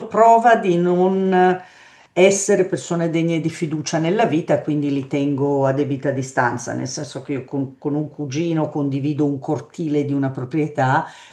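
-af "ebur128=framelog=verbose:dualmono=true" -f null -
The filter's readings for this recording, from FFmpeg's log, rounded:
Integrated loudness:
  I:         -16.3 LUFS
  Threshold: -26.4 LUFS
Loudness range:
  LRA:         5.7 LU
  Threshold: -37.3 LUFS
  LRA low:   -20.1 LUFS
  LRA high:  -14.4 LUFS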